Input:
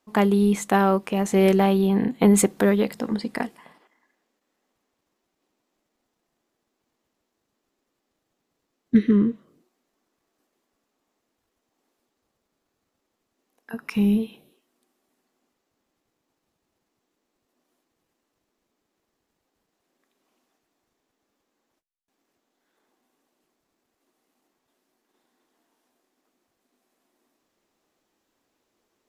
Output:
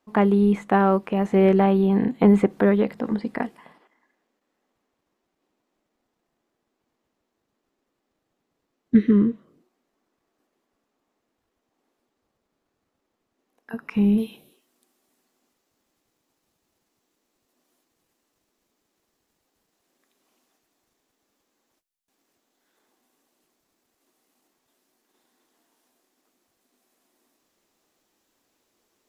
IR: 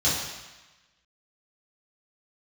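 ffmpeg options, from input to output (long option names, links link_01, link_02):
-filter_complex "[0:a]acrossover=split=2800[link_01][link_02];[link_02]acompressor=threshold=-49dB:ratio=4:attack=1:release=60[link_03];[link_01][link_03]amix=inputs=2:normalize=0,asetnsamples=nb_out_samples=441:pad=0,asendcmd='14.18 highshelf g 6',highshelf=frequency=3700:gain=-7,volume=1dB"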